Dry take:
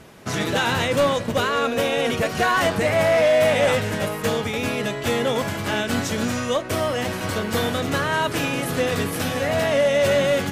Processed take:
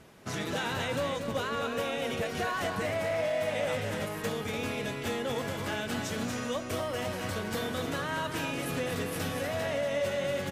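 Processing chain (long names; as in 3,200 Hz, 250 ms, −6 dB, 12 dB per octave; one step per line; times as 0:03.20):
downward compressor, threshold −20 dBFS, peak gain reduction 5.5 dB
single-tap delay 238 ms −6.5 dB
level −9 dB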